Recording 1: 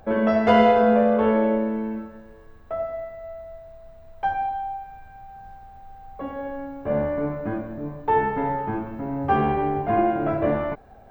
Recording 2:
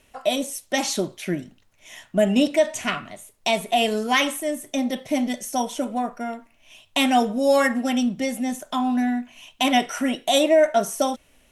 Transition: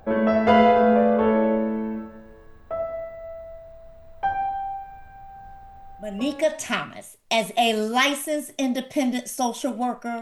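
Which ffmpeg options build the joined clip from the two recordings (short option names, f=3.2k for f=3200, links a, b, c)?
-filter_complex "[0:a]apad=whole_dur=10.21,atrim=end=10.21,atrim=end=6.66,asetpts=PTS-STARTPTS[a];[1:a]atrim=start=2.09:end=6.36,asetpts=PTS-STARTPTS[b];[a][b]acrossfade=d=0.72:c1=tri:c2=tri"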